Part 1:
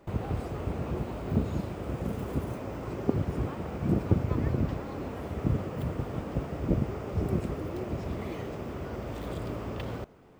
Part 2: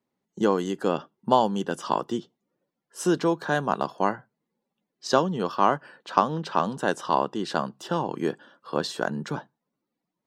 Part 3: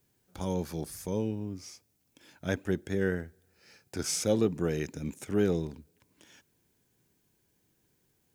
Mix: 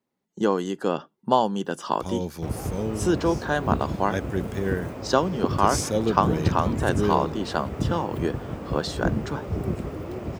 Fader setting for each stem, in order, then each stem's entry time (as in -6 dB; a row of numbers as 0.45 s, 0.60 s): +1.5 dB, 0.0 dB, +2.0 dB; 2.35 s, 0.00 s, 1.65 s